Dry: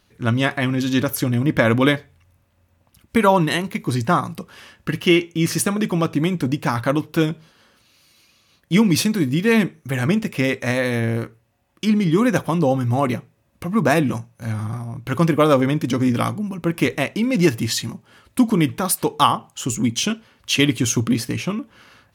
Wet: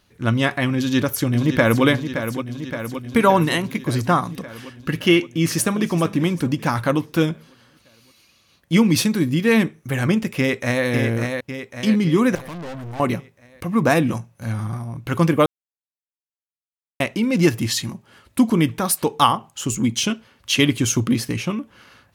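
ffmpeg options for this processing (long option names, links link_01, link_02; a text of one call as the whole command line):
ffmpeg -i in.wav -filter_complex "[0:a]asplit=2[link_01][link_02];[link_02]afade=type=in:start_time=0.77:duration=0.01,afade=type=out:start_time=1.84:duration=0.01,aecho=0:1:570|1140|1710|2280|2850|3420|3990|4560|5130|5700|6270:0.354813|0.248369|0.173859|0.121701|0.0851907|0.0596335|0.0417434|0.0292204|0.0204543|0.014318|0.0100226[link_03];[link_01][link_03]amix=inputs=2:normalize=0,asplit=2[link_04][link_05];[link_05]afade=type=in:start_time=5.24:duration=0.01,afade=type=out:start_time=5.92:duration=0.01,aecho=0:1:390|780|1170|1560:0.149624|0.0673306|0.0302988|0.0136344[link_06];[link_04][link_06]amix=inputs=2:normalize=0,asplit=2[link_07][link_08];[link_08]afade=type=in:start_time=10.38:duration=0.01,afade=type=out:start_time=10.85:duration=0.01,aecho=0:1:550|1100|1650|2200|2750|3300:0.562341|0.281171|0.140585|0.0702927|0.0351463|0.0175732[link_09];[link_07][link_09]amix=inputs=2:normalize=0,asettb=1/sr,asplit=3[link_10][link_11][link_12];[link_10]atrim=end=12.354[link_13];[link_11]atrim=start=12.35:end=13,asetpts=PTS-STARTPTS,afade=type=in:duration=0.004:curve=qsin,afade=type=out:start_time=0.646:duration=0.004:curve=qsin,aeval=exprs='(tanh(35.5*val(0)+0.45)-tanh(0.45))/35.5':channel_layout=same[link_14];[link_12]atrim=start=12.996[link_15];[link_13][link_14]acrossfade=duration=0.004:curve1=hsin:curve2=qsin[link_16];[link_16][link_15]acrossfade=duration=0.004:curve1=qsin:curve2=hsin,asplit=3[link_17][link_18][link_19];[link_17]atrim=end=15.46,asetpts=PTS-STARTPTS,afade=type=out:start_time=15.456:duration=0.004:curve=hsin[link_20];[link_18]atrim=start=15.46:end=17,asetpts=PTS-STARTPTS,volume=0[link_21];[link_19]atrim=start=17,asetpts=PTS-STARTPTS,afade=type=in:duration=0.004:curve=hsin[link_22];[link_20][link_21][link_22]concat=n=3:v=0:a=1" out.wav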